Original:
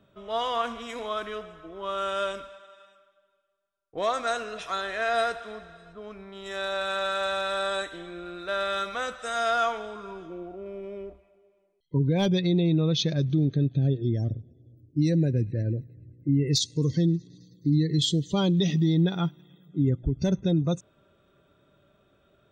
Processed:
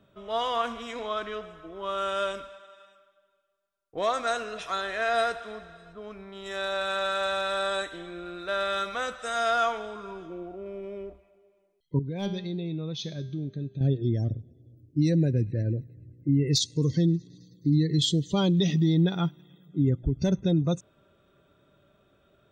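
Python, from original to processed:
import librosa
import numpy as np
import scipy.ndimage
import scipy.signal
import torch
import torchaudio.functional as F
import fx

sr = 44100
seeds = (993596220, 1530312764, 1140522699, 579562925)

y = fx.lowpass(x, sr, hz=6800.0, slope=12, at=(0.89, 1.43))
y = fx.comb_fb(y, sr, f0_hz=200.0, decay_s=0.69, harmonics='all', damping=0.0, mix_pct=70, at=(11.99, 13.81))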